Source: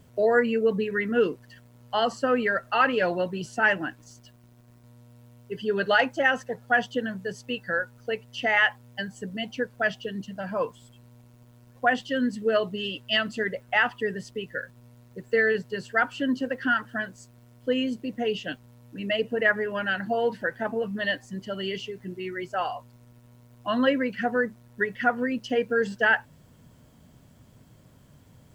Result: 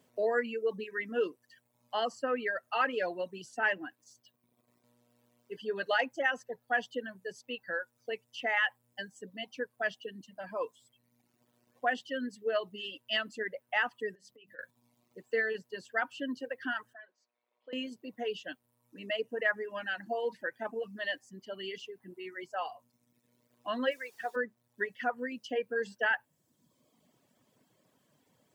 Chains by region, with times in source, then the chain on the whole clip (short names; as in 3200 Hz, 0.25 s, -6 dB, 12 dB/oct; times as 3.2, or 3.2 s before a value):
14.15–14.59 notches 50/100/150/200/250/300 Hz + compressor 8:1, threshold -42 dBFS
16.93–17.73 HPF 660 Hz + air absorption 280 m + compressor 3:1, threshold -39 dBFS
23.9–24.35 expander -29 dBFS + HPF 530 Hz + added noise pink -49 dBFS
whole clip: notch 1400 Hz, Q 13; reverb removal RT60 0.99 s; HPF 280 Hz 12 dB/oct; gain -7 dB